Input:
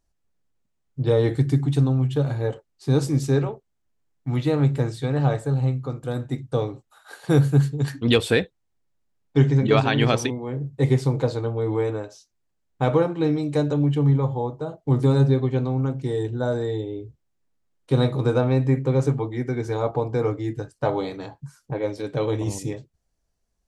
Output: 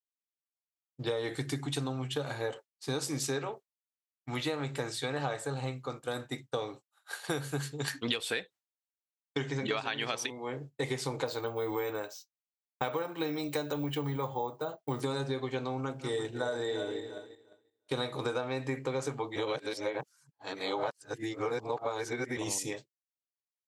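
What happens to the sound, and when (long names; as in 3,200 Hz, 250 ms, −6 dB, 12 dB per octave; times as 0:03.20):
0:11.26–0:15.01: bad sample-rate conversion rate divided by 2×, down filtered, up hold
0:15.79–0:17.94: feedback delay that plays each chunk backwards 174 ms, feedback 66%, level −10 dB
0:19.36–0:22.37: reverse
whole clip: high-pass filter 1,400 Hz 6 dB per octave; downward expander −44 dBFS; downward compressor 12 to 1, threshold −34 dBFS; level +5 dB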